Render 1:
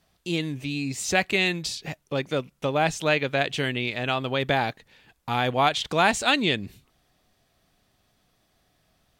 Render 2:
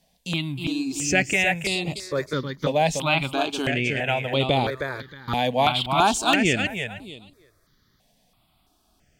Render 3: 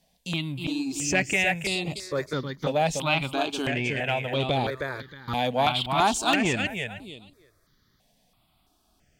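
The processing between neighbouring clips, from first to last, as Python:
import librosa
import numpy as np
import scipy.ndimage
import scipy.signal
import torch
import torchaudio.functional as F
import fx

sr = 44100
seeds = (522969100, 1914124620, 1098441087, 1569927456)

y1 = fx.echo_feedback(x, sr, ms=314, feedback_pct=20, wet_db=-5.5)
y1 = fx.phaser_held(y1, sr, hz=3.0, low_hz=350.0, high_hz=5800.0)
y1 = F.gain(torch.from_numpy(y1), 4.0).numpy()
y2 = fx.transformer_sat(y1, sr, knee_hz=820.0)
y2 = F.gain(torch.from_numpy(y2), -2.0).numpy()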